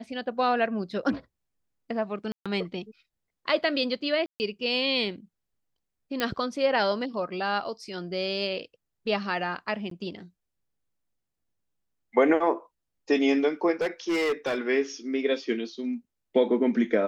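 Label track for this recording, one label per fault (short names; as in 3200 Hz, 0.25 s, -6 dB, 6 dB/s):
2.320000	2.460000	gap 0.136 s
4.260000	4.400000	gap 0.139 s
6.200000	6.200000	pop -12 dBFS
9.900000	9.910000	gap 13 ms
13.810000	14.590000	clipped -22.5 dBFS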